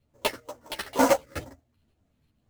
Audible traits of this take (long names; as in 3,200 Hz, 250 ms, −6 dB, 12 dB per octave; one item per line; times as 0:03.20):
phaser sweep stages 6, 2.1 Hz, lowest notch 740–4,300 Hz
aliases and images of a low sample rate 7,100 Hz, jitter 20%
tremolo saw up 2.6 Hz, depth 40%
a shimmering, thickened sound